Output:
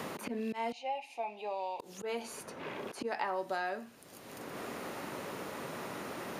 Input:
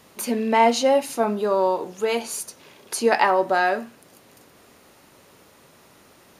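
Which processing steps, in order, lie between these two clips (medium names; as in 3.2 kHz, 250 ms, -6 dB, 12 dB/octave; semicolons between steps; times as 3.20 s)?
0.72–1.80 s: two resonant band-passes 1.4 kHz, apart 1.6 oct; slow attack 382 ms; three bands compressed up and down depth 100%; trim -7 dB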